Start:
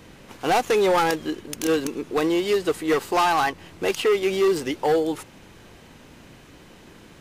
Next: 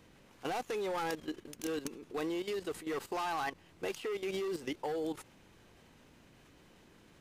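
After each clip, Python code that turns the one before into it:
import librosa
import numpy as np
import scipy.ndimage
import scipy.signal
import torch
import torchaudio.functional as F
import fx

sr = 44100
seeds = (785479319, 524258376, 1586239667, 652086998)

y = fx.level_steps(x, sr, step_db=13)
y = F.gain(torch.from_numpy(y), -9.0).numpy()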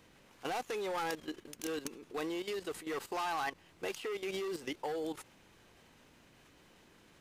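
y = fx.low_shelf(x, sr, hz=470.0, db=-5.0)
y = F.gain(torch.from_numpy(y), 1.0).numpy()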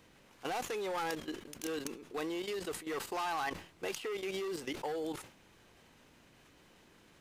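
y = fx.sustainer(x, sr, db_per_s=120.0)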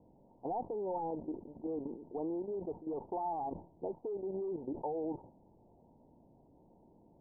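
y = scipy.signal.sosfilt(scipy.signal.cheby1(6, 3, 940.0, 'lowpass', fs=sr, output='sos'), x)
y = F.gain(torch.from_numpy(y), 2.5).numpy()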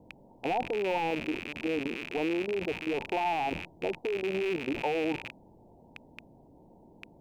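y = fx.rattle_buzz(x, sr, strikes_db=-59.0, level_db=-33.0)
y = F.gain(torch.from_numpy(y), 7.0).numpy()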